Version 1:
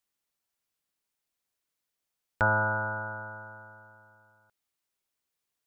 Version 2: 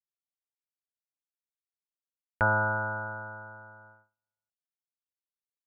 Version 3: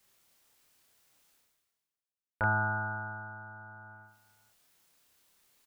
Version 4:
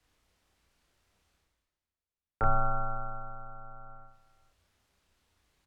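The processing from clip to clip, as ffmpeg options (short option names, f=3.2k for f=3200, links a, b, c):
-af "agate=range=-34dB:threshold=-54dB:ratio=16:detection=peak,lowpass=f=2.3k:w=0.5412,lowpass=f=2.3k:w=1.3066"
-filter_complex "[0:a]areverse,acompressor=mode=upward:threshold=-39dB:ratio=2.5,areverse,asplit=2[a][b];[b]adelay=29,volume=-2dB[c];[a][c]amix=inputs=2:normalize=0,volume=-6dB"
-af "acontrast=62,aemphasis=mode=reproduction:type=bsi,afreqshift=-90,volume=-6dB"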